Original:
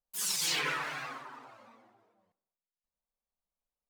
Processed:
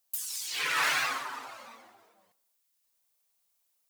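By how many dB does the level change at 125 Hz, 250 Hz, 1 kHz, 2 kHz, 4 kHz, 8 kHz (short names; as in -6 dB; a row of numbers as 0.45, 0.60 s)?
-6.5, -3.5, +6.0, +6.0, +1.0, -1.5 dB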